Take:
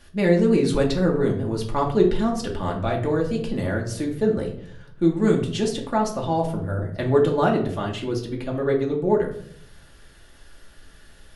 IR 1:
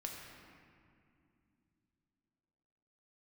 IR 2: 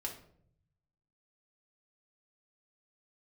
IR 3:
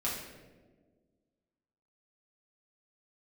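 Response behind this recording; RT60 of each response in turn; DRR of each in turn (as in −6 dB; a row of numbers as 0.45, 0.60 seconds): 2; 2.6, 0.65, 1.5 seconds; −0.5, −1.5, −7.0 decibels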